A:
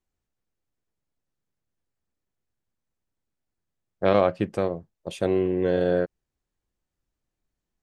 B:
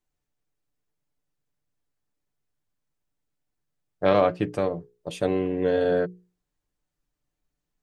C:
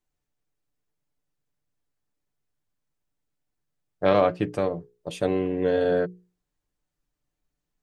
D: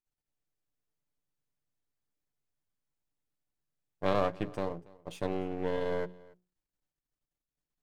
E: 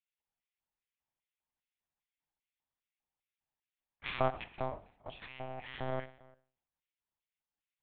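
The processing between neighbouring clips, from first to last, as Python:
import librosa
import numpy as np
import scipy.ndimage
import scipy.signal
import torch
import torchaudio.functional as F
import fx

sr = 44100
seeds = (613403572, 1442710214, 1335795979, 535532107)

y1 = fx.hum_notches(x, sr, base_hz=60, count=8)
y1 = y1 + 0.47 * np.pad(y1, (int(6.8 * sr / 1000.0), 0))[:len(y1)]
y2 = y1
y3 = np.where(y2 < 0.0, 10.0 ** (-12.0 / 20.0) * y2, y2)
y3 = y3 + 10.0 ** (-23.0 / 20.0) * np.pad(y3, (int(282 * sr / 1000.0), 0))[:len(y3)]
y3 = y3 * 10.0 ** (-6.5 / 20.0)
y4 = fx.filter_lfo_highpass(y3, sr, shape='square', hz=2.5, low_hz=730.0, high_hz=2300.0, q=2.3)
y4 = fx.rev_schroeder(y4, sr, rt60_s=0.57, comb_ms=28, drr_db=13.5)
y4 = fx.lpc_monotone(y4, sr, seeds[0], pitch_hz=130.0, order=8)
y4 = y4 * 10.0 ** (-2.5 / 20.0)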